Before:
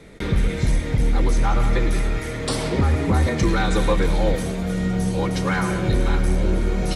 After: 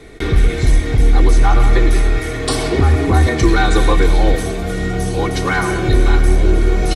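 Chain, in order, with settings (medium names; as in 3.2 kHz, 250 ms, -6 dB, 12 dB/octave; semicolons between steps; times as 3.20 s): comb 2.7 ms, depth 56%; trim +5 dB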